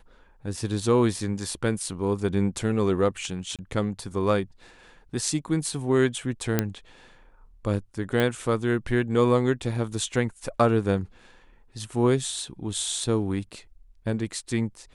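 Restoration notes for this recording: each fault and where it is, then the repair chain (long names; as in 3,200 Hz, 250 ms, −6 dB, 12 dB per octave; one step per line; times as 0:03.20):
0:03.56–0:03.59: drop-out 27 ms
0:06.59: click −7 dBFS
0:08.20: click −12 dBFS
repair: click removal
repair the gap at 0:03.56, 27 ms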